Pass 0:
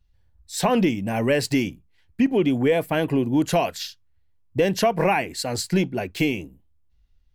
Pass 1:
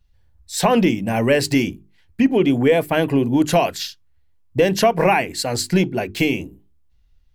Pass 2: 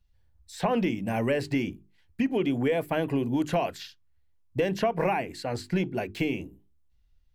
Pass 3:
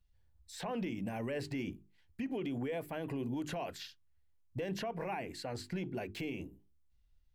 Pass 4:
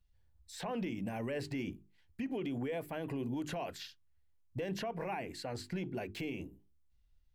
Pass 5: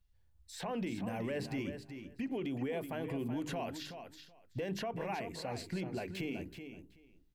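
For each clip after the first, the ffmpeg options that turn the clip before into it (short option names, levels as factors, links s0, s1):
-af "bandreject=f=50:t=h:w=6,bandreject=f=100:t=h:w=6,bandreject=f=150:t=h:w=6,bandreject=f=200:t=h:w=6,bandreject=f=250:t=h:w=6,bandreject=f=300:t=h:w=6,bandreject=f=350:t=h:w=6,bandreject=f=400:t=h:w=6,volume=1.68"
-filter_complex "[0:a]acrossover=split=960|3100[s0][s1][s2];[s0]acompressor=threshold=0.178:ratio=4[s3];[s1]acompressor=threshold=0.0501:ratio=4[s4];[s2]acompressor=threshold=0.00891:ratio=4[s5];[s3][s4][s5]amix=inputs=3:normalize=0,volume=0.422"
-af "alimiter=level_in=1.19:limit=0.0631:level=0:latency=1:release=61,volume=0.841,volume=0.562"
-af anull
-af "aecho=1:1:377|754:0.355|0.0568"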